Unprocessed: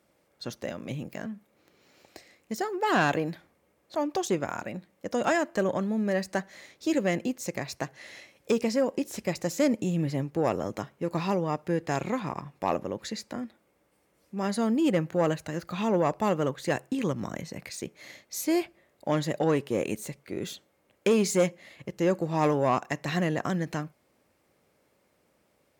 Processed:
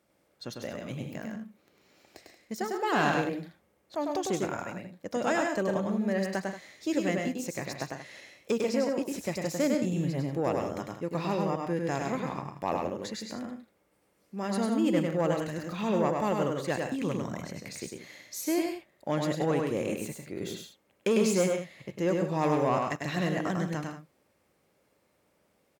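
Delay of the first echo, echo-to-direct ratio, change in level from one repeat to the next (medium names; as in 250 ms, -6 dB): 100 ms, -2.0 dB, no regular repeats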